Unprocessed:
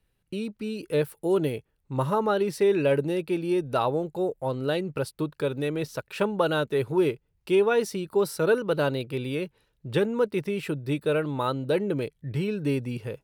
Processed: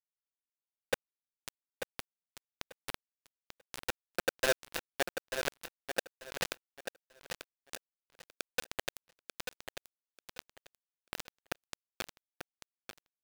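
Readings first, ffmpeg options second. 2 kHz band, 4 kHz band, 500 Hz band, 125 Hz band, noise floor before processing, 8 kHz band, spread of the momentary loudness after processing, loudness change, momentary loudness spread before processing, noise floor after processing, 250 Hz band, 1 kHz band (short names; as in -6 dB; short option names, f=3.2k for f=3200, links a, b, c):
-5.5 dB, -3.5 dB, -18.0 dB, -27.0 dB, -73 dBFS, 0.0 dB, 17 LU, -13.0 dB, 9 LU, under -85 dBFS, -25.0 dB, -14.5 dB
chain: -filter_complex "[0:a]adynamicequalizer=threshold=0.00251:dfrequency=2300:dqfactor=5.5:tfrequency=2300:tqfactor=5.5:attack=5:release=100:ratio=0.375:range=2.5:mode=boostabove:tftype=bell,asplit=2[a][b];[b]acrusher=bits=4:mode=log:mix=0:aa=0.000001,volume=-7.5dB[c];[a][c]amix=inputs=2:normalize=0,aeval=exprs='(tanh(7.08*val(0)+0.3)-tanh(0.3))/7.08':c=same,aeval=exprs='0.0631*(abs(mod(val(0)/0.0631+3,4)-2)-1)':c=same,asplit=3[d][e][f];[d]bandpass=f=530:t=q:w=8,volume=0dB[g];[e]bandpass=f=1.84k:t=q:w=8,volume=-6dB[h];[f]bandpass=f=2.48k:t=q:w=8,volume=-9dB[i];[g][h][i]amix=inputs=3:normalize=0,acrusher=bits=4:mix=0:aa=0.000001,asplit=2[j][k];[k]aecho=0:1:890|1780|2670:0.398|0.0836|0.0176[l];[j][l]amix=inputs=2:normalize=0,volume=5dB"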